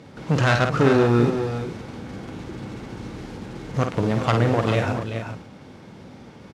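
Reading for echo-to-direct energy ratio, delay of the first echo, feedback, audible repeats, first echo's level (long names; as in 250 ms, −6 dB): −4.0 dB, 51 ms, repeats not evenly spaced, 3, −6.5 dB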